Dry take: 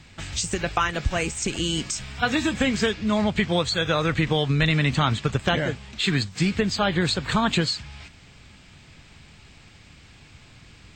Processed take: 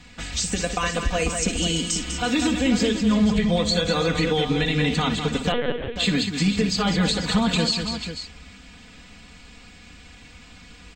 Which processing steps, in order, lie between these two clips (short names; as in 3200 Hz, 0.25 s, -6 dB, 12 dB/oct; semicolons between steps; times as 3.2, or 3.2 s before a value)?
3.16–3.68 low shelf 160 Hz +9.5 dB; comb 4.1 ms, depth 95%; dynamic EQ 1500 Hz, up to -6 dB, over -36 dBFS, Q 0.99; limiter -12.5 dBFS, peak gain reduction 7 dB; tapped delay 60/198/335/494 ms -12/-7.5/-15/-10.5 dB; 5.52–5.96 LPC vocoder at 8 kHz pitch kept